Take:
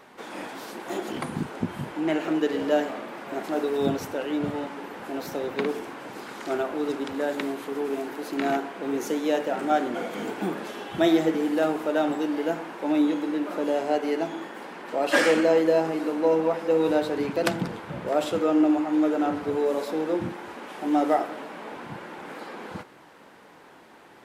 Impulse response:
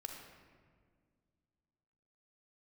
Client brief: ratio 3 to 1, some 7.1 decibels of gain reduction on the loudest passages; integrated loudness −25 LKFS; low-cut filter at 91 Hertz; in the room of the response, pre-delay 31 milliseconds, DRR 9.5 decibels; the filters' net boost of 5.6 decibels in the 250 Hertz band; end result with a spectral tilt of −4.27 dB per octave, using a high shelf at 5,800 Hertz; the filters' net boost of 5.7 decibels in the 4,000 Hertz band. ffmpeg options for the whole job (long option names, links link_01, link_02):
-filter_complex "[0:a]highpass=91,equalizer=frequency=250:width_type=o:gain=7.5,equalizer=frequency=4000:width_type=o:gain=8.5,highshelf=frequency=5800:gain=-3.5,acompressor=threshold=-21dB:ratio=3,asplit=2[link_01][link_02];[1:a]atrim=start_sample=2205,adelay=31[link_03];[link_02][link_03]afir=irnorm=-1:irlink=0,volume=-7dB[link_04];[link_01][link_04]amix=inputs=2:normalize=0,volume=1dB"